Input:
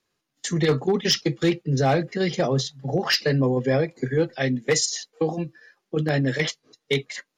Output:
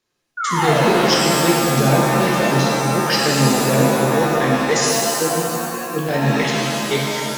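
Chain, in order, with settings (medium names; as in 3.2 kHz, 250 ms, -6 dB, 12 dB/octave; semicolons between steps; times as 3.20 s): painted sound fall, 0.37–1.02 s, 320–1500 Hz -24 dBFS; pitch-shifted reverb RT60 2.2 s, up +7 st, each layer -2 dB, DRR -2.5 dB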